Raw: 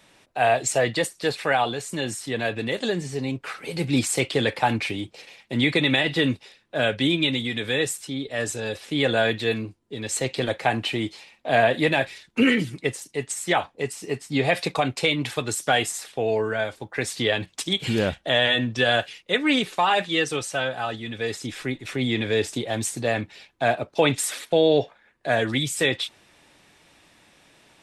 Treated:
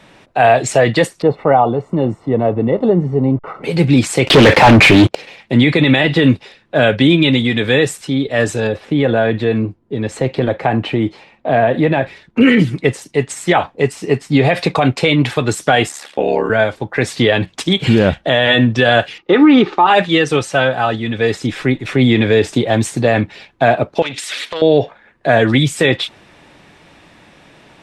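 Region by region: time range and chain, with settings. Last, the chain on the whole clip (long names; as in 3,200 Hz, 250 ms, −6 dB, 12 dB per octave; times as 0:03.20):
0:01.22–0:03.64: hold until the input has moved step −43 dBFS + Savitzky-Golay smoothing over 65 samples
0:04.27–0:05.15: leveller curve on the samples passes 5 + highs frequency-modulated by the lows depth 0.37 ms
0:08.67–0:12.41: high-shelf EQ 2,100 Hz −11 dB + downward compressor 2 to 1, threshold −25 dBFS
0:15.88–0:16.50: high-pass filter 230 Hz + comb filter 3.6 ms, depth 36% + ring modulation 36 Hz
0:19.18–0:19.87: mu-law and A-law mismatch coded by A + low-pass filter 5,500 Hz 24 dB per octave + hollow resonant body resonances 350/840/1,200 Hz, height 16 dB, ringing for 30 ms
0:24.02–0:24.62: meter weighting curve D + downward compressor 8 to 1, threshold −27 dBFS + saturating transformer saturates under 2,500 Hz
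whole clip: low-pass filter 2,200 Hz 6 dB per octave; parametric band 160 Hz +2.5 dB 0.99 octaves; boost into a limiter +14 dB; level −1 dB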